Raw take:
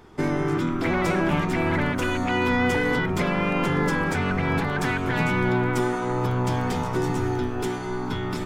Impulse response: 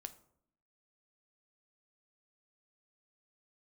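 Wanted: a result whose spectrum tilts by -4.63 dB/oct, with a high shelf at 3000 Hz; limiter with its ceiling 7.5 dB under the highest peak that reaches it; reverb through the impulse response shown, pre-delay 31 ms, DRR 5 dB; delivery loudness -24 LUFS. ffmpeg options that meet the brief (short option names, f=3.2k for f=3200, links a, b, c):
-filter_complex "[0:a]highshelf=f=3k:g=7.5,alimiter=limit=-17.5dB:level=0:latency=1,asplit=2[a][b];[1:a]atrim=start_sample=2205,adelay=31[c];[b][c]afir=irnorm=-1:irlink=0,volume=-0.5dB[d];[a][d]amix=inputs=2:normalize=0,volume=1dB"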